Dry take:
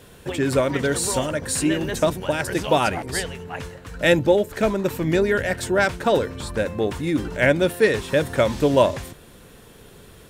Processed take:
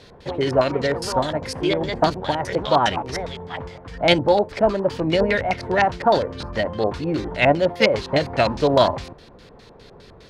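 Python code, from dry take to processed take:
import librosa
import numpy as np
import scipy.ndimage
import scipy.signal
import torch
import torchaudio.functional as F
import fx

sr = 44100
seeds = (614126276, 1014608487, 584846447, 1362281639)

y = fx.formant_shift(x, sr, semitones=3)
y = fx.filter_lfo_lowpass(y, sr, shape='square', hz=4.9, low_hz=930.0, high_hz=4800.0, q=1.8)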